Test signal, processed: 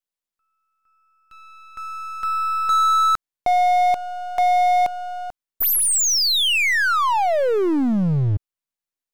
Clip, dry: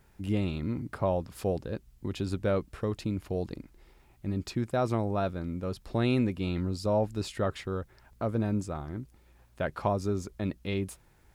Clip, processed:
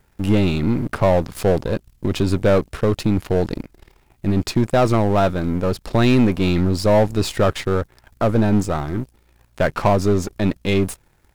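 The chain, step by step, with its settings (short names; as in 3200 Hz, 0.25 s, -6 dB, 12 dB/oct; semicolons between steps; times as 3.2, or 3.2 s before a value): half-wave gain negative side -7 dB; sample leveller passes 2; gain +9 dB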